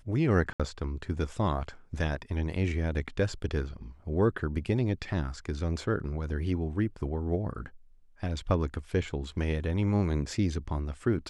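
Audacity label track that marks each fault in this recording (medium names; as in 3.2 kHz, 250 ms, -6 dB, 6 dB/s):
0.530000	0.600000	dropout 66 ms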